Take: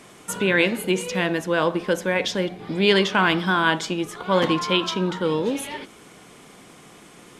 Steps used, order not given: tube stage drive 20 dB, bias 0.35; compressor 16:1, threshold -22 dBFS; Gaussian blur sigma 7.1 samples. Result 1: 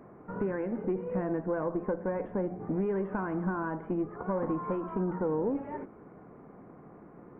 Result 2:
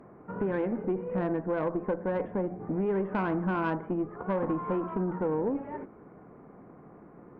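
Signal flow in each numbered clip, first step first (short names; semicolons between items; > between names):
compressor > tube stage > Gaussian blur; Gaussian blur > compressor > tube stage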